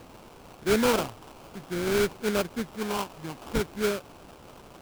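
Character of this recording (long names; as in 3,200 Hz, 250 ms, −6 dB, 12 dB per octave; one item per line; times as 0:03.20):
a quantiser's noise floor 8 bits, dither triangular
phaser sweep stages 6, 0.55 Hz, lowest notch 460–1,200 Hz
aliases and images of a low sample rate 1,900 Hz, jitter 20%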